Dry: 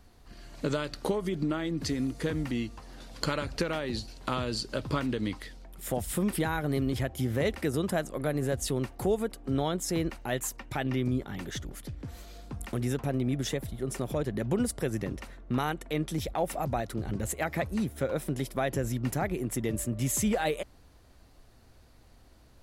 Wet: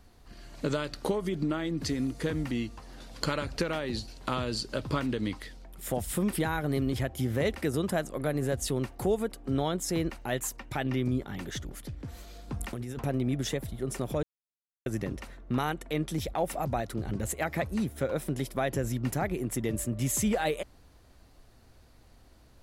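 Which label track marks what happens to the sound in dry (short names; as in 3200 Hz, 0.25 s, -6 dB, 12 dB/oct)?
12.480000	13.050000	negative-ratio compressor -35 dBFS
14.230000	14.860000	mute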